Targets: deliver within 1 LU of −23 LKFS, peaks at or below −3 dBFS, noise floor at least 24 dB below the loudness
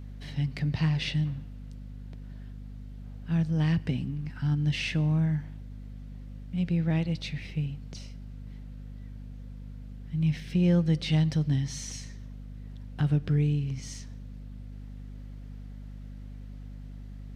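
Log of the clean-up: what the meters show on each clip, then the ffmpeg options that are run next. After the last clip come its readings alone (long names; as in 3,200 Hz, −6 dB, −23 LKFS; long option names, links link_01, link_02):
mains hum 50 Hz; hum harmonics up to 250 Hz; level of the hum −39 dBFS; integrated loudness −28.5 LKFS; sample peak −15.5 dBFS; target loudness −23.0 LKFS
→ -af "bandreject=frequency=50:width_type=h:width=4,bandreject=frequency=100:width_type=h:width=4,bandreject=frequency=150:width_type=h:width=4,bandreject=frequency=200:width_type=h:width=4,bandreject=frequency=250:width_type=h:width=4"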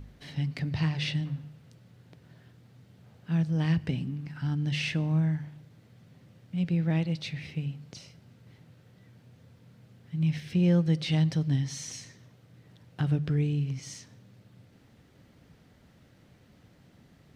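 mains hum none found; integrated loudness −29.5 LKFS; sample peak −16.0 dBFS; target loudness −23.0 LKFS
→ -af "volume=6.5dB"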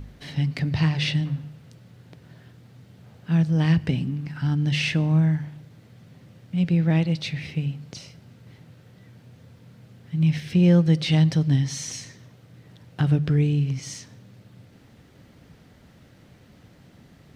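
integrated loudness −23.0 LKFS; sample peak −9.5 dBFS; background noise floor −53 dBFS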